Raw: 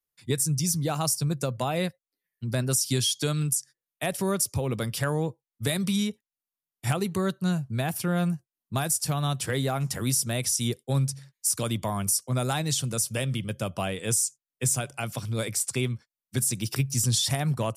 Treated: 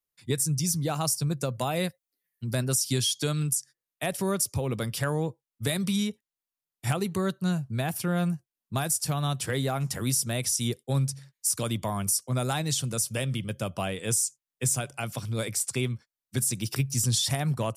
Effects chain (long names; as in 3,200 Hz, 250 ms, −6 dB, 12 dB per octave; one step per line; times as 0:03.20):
0:01.54–0:02.64: high-shelf EQ 7,100 Hz +8 dB
level −1 dB